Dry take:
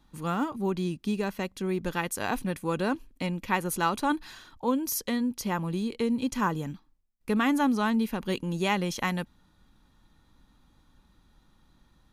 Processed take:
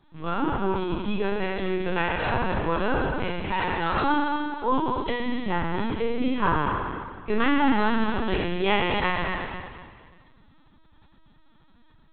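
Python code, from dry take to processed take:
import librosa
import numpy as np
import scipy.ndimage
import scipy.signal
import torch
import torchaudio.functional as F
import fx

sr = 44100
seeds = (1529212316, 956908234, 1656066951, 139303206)

p1 = fx.spec_trails(x, sr, decay_s=1.66)
p2 = fx.clip_hard(p1, sr, threshold_db=-24.0, at=(3.32, 3.95))
p3 = fx.hum_notches(p2, sr, base_hz=60, count=5)
p4 = p3 + fx.echo_feedback(p3, sr, ms=231, feedback_pct=24, wet_db=-8, dry=0)
p5 = fx.lpc_vocoder(p4, sr, seeds[0], excitation='pitch_kept', order=16)
y = F.gain(torch.from_numpy(p5), 1.5).numpy()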